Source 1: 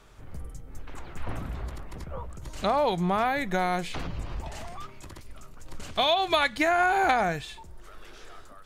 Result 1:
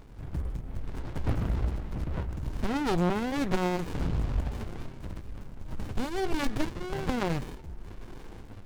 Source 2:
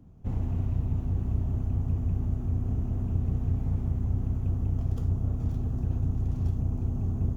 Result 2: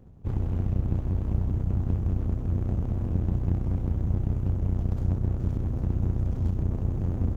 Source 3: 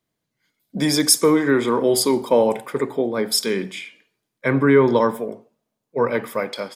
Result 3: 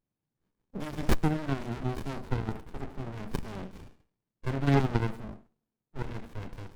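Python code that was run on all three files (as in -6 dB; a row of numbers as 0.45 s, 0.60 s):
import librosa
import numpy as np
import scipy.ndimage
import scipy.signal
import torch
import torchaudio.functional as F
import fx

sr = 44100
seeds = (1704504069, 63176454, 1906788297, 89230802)

y = fx.cheby_harmonics(x, sr, harmonics=(7, 8), levels_db=(-44, -20), full_scale_db=-1.0)
y = fx.running_max(y, sr, window=65)
y = librosa.util.normalize(y) * 10.0 ** (-12 / 20.0)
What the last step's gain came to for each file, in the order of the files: +8.0 dB, +3.0 dB, -5.0 dB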